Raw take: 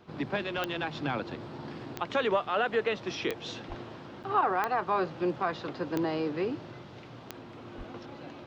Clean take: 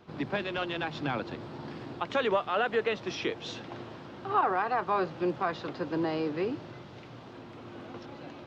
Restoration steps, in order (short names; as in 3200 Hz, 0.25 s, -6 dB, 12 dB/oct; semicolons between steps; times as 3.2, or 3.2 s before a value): de-click; 3.68–3.8 HPF 140 Hz 24 dB/oct; 7.77–7.89 HPF 140 Hz 24 dB/oct; interpolate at 4.23, 7.4 ms